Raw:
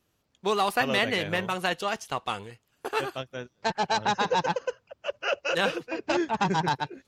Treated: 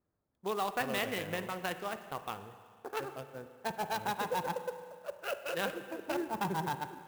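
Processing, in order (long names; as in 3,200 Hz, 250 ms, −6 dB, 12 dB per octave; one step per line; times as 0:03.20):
adaptive Wiener filter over 15 samples
spring reverb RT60 2 s, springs 36/50 ms, chirp 40 ms, DRR 10 dB
converter with an unsteady clock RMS 0.024 ms
level −8.5 dB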